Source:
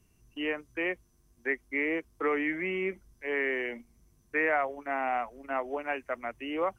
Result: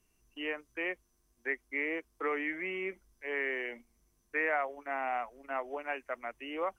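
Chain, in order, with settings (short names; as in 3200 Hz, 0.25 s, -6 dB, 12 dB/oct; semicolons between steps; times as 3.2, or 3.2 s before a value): bell 110 Hz -12 dB 2.2 oct; gain -3 dB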